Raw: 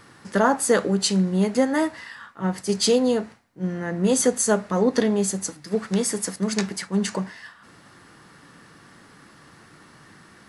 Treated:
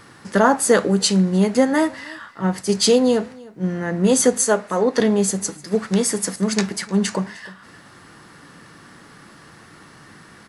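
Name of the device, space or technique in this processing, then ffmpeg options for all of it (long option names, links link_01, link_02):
ducked delay: -filter_complex "[0:a]asettb=1/sr,asplit=3[link_01][link_02][link_03];[link_01]atrim=end=4.444[link_04];[link_02]atrim=start=4.44:end=5,asetpts=PTS-STARTPTS,afade=type=in:duration=0.004:curve=qsin,afade=type=out:start_time=0.556:duration=0.004:curve=qsin,bass=frequency=250:gain=-11,treble=frequency=4000:gain=-3[link_05];[link_03]atrim=start=4.996[link_06];[link_04][link_05]acrossfade=duration=0.004:curve1=hsin:curve2=qsin[link_07];[link_07][link_06]acrossfade=duration=0.004:curve1=qsin:curve2=hsin,asplit=3[link_08][link_09][link_10];[link_09]adelay=304,volume=-7.5dB[link_11];[link_10]apad=whole_len=475892[link_12];[link_11][link_12]sidechaincompress=threshold=-44dB:ratio=4:attack=16:release=524[link_13];[link_08][link_13]amix=inputs=2:normalize=0,volume=4dB"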